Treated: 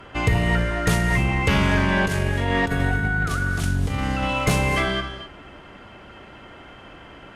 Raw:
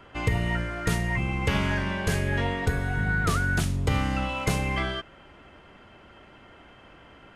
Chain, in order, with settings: 1.83–4.23 negative-ratio compressor -30 dBFS, ratio -1; added harmonics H 5 -21 dB, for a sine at -11.5 dBFS; non-linear reverb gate 0.28 s rising, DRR 9.5 dB; gain +4 dB

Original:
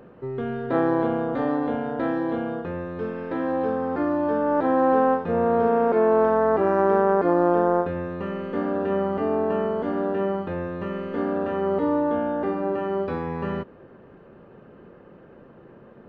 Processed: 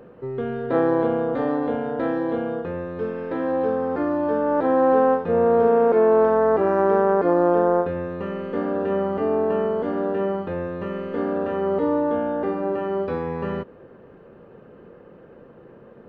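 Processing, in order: bell 480 Hz +5.5 dB 0.31 oct

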